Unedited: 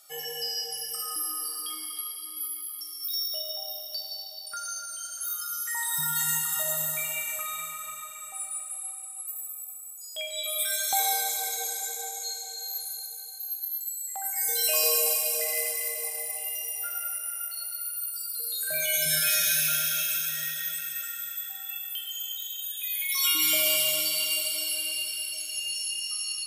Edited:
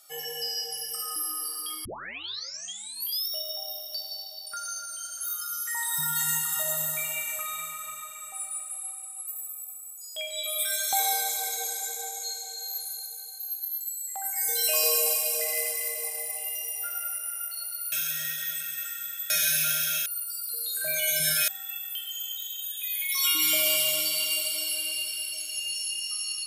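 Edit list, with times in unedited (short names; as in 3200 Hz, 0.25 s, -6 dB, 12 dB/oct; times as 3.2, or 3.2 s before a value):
1.85 tape start 1.44 s
17.92–19.34 swap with 20.1–21.48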